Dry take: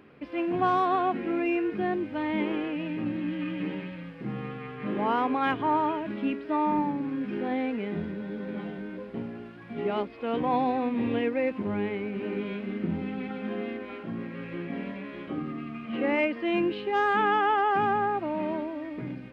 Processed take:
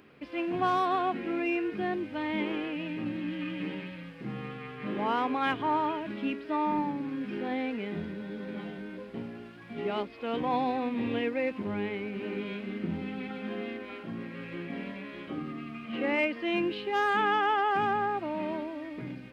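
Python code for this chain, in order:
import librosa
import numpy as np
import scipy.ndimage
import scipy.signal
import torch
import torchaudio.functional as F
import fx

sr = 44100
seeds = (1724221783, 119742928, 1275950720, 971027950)

y = fx.high_shelf(x, sr, hz=3100.0, db=10.5)
y = y * librosa.db_to_amplitude(-3.5)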